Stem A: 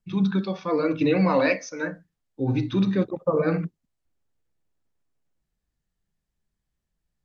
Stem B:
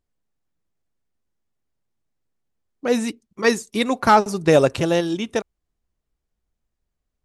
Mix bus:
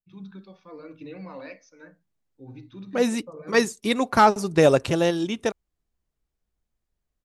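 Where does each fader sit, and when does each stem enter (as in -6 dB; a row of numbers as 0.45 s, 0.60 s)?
-19.0 dB, -2.0 dB; 0.00 s, 0.10 s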